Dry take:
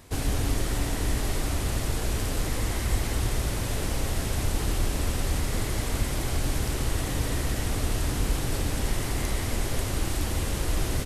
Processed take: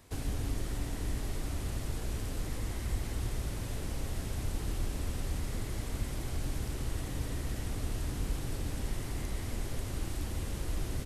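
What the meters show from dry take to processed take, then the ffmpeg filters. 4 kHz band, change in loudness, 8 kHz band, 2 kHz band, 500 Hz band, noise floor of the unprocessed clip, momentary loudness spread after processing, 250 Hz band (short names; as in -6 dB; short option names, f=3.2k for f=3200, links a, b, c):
-11.5 dB, -8.5 dB, -11.5 dB, -11.5 dB, -10.0 dB, -31 dBFS, 2 LU, -8.5 dB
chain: -filter_complex "[0:a]acrossover=split=360[a][b];[b]acompressor=threshold=-36dB:ratio=6[c];[a][c]amix=inputs=2:normalize=0,volume=-7.5dB"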